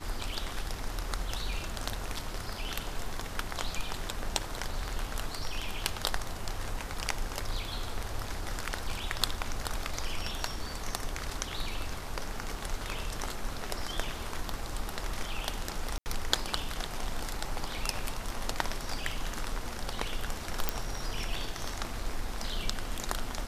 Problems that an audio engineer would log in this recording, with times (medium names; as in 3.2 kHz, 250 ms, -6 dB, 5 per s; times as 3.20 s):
15.98–16.06 s: dropout 79 ms
20.69 s: pop -11 dBFS